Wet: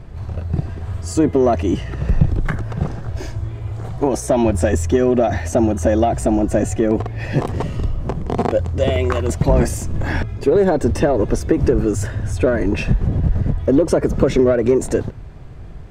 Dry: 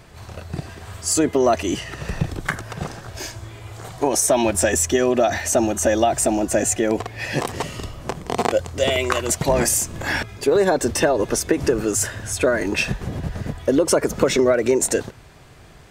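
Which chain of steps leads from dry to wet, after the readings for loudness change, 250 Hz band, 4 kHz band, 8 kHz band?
+1.5 dB, +5.0 dB, −7.5 dB, −10.5 dB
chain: spectral tilt −3.5 dB per octave
in parallel at −8 dB: soft clipping −16.5 dBFS, distortion −7 dB
on the sum: level −3 dB

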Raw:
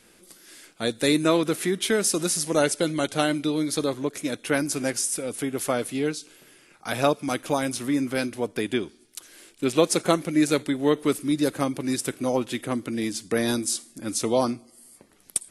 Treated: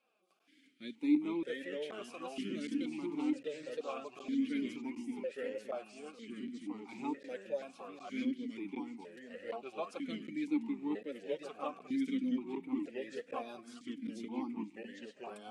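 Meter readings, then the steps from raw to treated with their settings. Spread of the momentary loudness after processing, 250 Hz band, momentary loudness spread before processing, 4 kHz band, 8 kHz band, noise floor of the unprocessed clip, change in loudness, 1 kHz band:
13 LU, −10.5 dB, 8 LU, −20.5 dB, below −30 dB, −57 dBFS, −14.5 dB, −16.0 dB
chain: notch filter 720 Hz, Q 12
delay with pitch and tempo change per echo 314 ms, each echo −2 semitones, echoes 3
flanger 1.8 Hz, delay 3.5 ms, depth 2.1 ms, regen +25%
regular buffer underruns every 0.76 s, samples 512, zero, from 0:00.39
formant filter that steps through the vowels 2.1 Hz
level −2.5 dB

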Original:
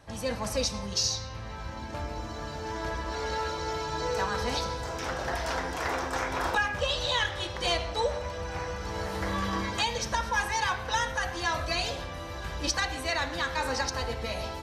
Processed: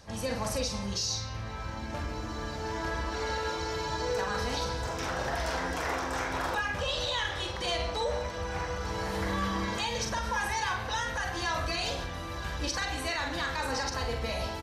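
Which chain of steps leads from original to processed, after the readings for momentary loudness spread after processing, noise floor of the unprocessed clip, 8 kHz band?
6 LU, −39 dBFS, −2.5 dB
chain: brickwall limiter −23 dBFS, peak gain reduction 6.5 dB
double-tracking delay 45 ms −6 dB
on a send: backwards echo 681 ms −24 dB

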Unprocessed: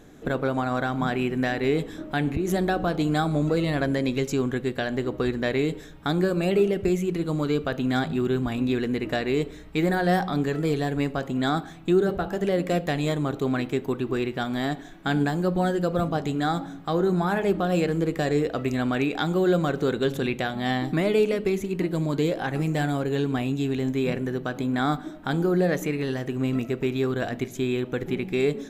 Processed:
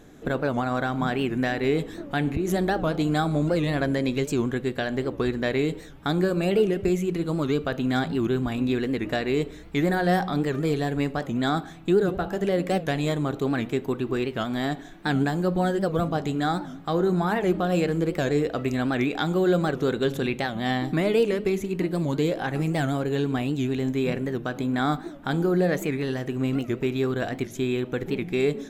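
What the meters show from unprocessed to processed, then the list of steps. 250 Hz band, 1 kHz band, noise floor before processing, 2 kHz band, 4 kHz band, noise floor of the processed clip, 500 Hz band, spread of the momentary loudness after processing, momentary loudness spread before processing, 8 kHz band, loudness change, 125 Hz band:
0.0 dB, 0.0 dB, −41 dBFS, 0.0 dB, 0.0 dB, −41 dBFS, 0.0 dB, 5 LU, 5 LU, 0.0 dB, 0.0 dB, 0.0 dB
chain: wow of a warped record 78 rpm, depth 160 cents

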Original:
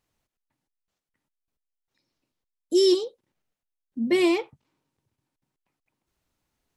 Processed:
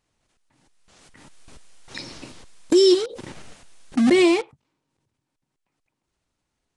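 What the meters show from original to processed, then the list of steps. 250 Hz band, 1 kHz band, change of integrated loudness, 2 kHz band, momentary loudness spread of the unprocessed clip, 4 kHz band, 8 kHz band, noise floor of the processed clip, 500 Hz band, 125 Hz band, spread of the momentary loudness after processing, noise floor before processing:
+5.5 dB, +5.5 dB, +4.5 dB, +5.5 dB, 15 LU, +4.5 dB, +6.0 dB, −80 dBFS, +4.5 dB, can't be measured, 20 LU, −85 dBFS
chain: in parallel at −5 dB: bit reduction 5 bits
on the sum: downsampling to 22,050 Hz
background raised ahead of every attack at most 23 dB per second

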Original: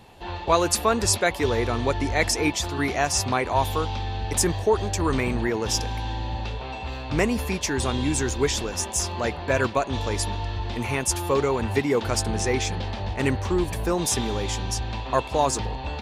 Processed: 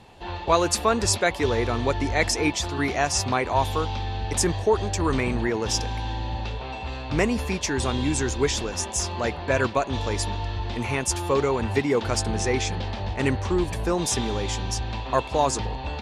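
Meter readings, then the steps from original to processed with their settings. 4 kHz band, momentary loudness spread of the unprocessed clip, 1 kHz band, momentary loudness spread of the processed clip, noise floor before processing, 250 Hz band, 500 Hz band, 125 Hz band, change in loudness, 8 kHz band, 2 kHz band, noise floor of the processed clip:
0.0 dB, 8 LU, 0.0 dB, 8 LU, −35 dBFS, 0.0 dB, 0.0 dB, 0.0 dB, 0.0 dB, −1.0 dB, 0.0 dB, −35 dBFS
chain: low-pass filter 9,300 Hz 12 dB per octave

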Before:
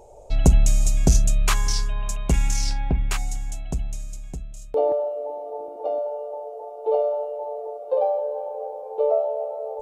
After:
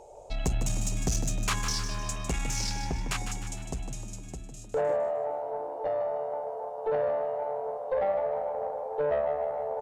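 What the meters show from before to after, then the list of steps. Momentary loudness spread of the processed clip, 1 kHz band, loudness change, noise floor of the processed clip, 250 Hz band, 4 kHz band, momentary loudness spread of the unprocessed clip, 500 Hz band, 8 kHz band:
9 LU, −2.5 dB, −6.5 dB, −43 dBFS, −7.5 dB, −3.0 dB, 14 LU, −4.5 dB, −4.5 dB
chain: Bessel low-pass filter 9,300 Hz, order 2
low-shelf EQ 250 Hz −9.5 dB
in parallel at 0 dB: downward compressor, threshold −29 dBFS, peak gain reduction 12 dB
on the sum: tube saturation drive 16 dB, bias 0.25
echo with shifted repeats 153 ms, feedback 47%, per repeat +77 Hz, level −9 dB
level −5 dB

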